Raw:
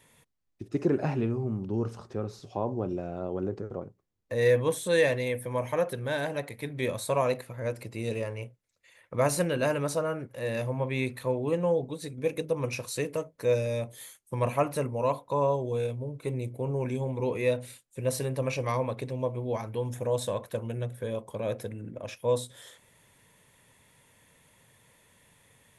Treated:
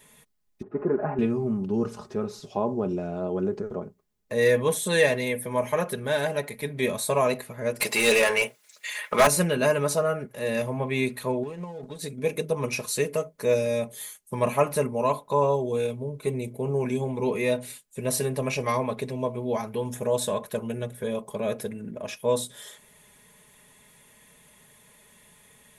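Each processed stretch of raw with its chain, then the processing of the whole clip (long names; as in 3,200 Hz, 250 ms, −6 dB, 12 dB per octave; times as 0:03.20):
0:00.62–0:01.19: mu-law and A-law mismatch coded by mu + low-pass filter 1,500 Hz 24 dB per octave + low-shelf EQ 250 Hz −11.5 dB
0:07.80–0:09.27: spectral tilt +3 dB per octave + mid-hump overdrive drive 25 dB, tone 2,900 Hz, clips at −13 dBFS
0:11.43–0:11.99: mu-law and A-law mismatch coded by A + low-pass filter 8,800 Hz + downward compressor 16 to 1, threshold −35 dBFS
whole clip: high-shelf EQ 7,700 Hz +5.5 dB; comb filter 4.8 ms, depth 63%; level +3 dB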